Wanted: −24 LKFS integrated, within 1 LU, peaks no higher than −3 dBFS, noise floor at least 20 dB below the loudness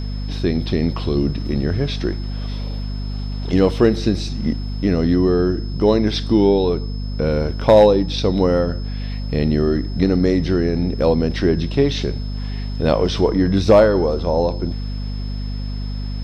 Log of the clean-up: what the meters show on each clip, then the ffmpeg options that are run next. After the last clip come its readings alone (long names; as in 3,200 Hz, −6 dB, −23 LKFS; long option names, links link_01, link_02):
mains hum 50 Hz; hum harmonics up to 250 Hz; level of the hum −22 dBFS; interfering tone 5,200 Hz; level of the tone −40 dBFS; integrated loudness −19.0 LKFS; sample peak −2.5 dBFS; target loudness −24.0 LKFS
→ -af "bandreject=frequency=50:width_type=h:width=4,bandreject=frequency=100:width_type=h:width=4,bandreject=frequency=150:width_type=h:width=4,bandreject=frequency=200:width_type=h:width=4,bandreject=frequency=250:width_type=h:width=4"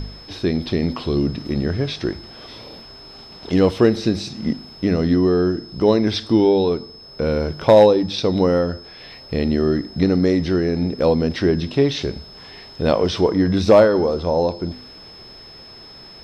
mains hum none found; interfering tone 5,200 Hz; level of the tone −40 dBFS
→ -af "bandreject=frequency=5200:width=30"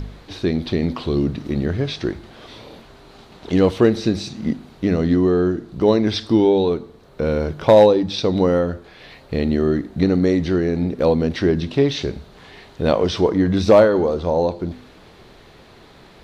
interfering tone none found; integrated loudness −19.0 LKFS; sample peak −2.5 dBFS; target loudness −24.0 LKFS
→ -af "volume=-5dB"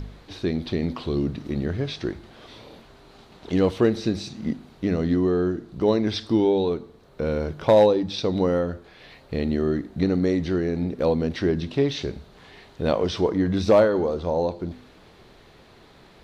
integrated loudness −24.0 LKFS; sample peak −7.5 dBFS; background noise floor −52 dBFS